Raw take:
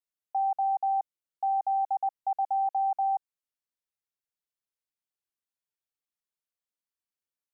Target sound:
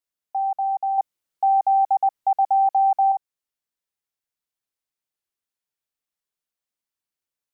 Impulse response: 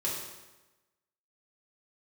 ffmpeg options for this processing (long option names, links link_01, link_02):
-filter_complex "[0:a]asettb=1/sr,asplit=3[link_01][link_02][link_03];[link_01]atrim=end=0.984[link_04];[link_02]atrim=start=0.98:end=3.12,asetpts=PTS-STARTPTS,afade=type=in:duration=0.004:curve=qsin,afade=type=out:start_time=2.136:duration=0.004:curve=qsin,acontrast=41[link_05];[link_03]atrim=start=3.116[link_06];[link_04][link_05]acrossfade=duration=0.004:curve1=hsin:curve2=qsin[link_07];[link_07][link_06]acrossfade=duration=0.004:curve1=qsin:curve2=hsin,volume=3.5dB"